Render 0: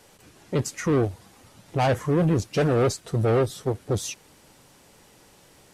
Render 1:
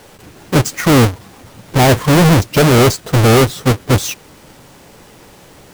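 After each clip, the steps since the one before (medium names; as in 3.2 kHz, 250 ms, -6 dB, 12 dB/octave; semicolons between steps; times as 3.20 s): square wave that keeps the level; trim +8 dB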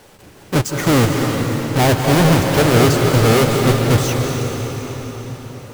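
reverberation RT60 5.0 s, pre-delay 152 ms, DRR 1 dB; trim -4.5 dB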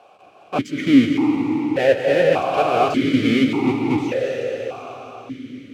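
stepped vowel filter 1.7 Hz; trim +8.5 dB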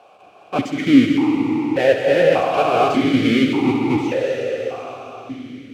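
thinning echo 66 ms, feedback 65%, high-pass 180 Hz, level -10 dB; trim +1 dB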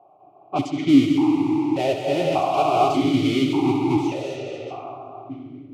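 level-controlled noise filter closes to 710 Hz, open at -15.5 dBFS; static phaser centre 330 Hz, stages 8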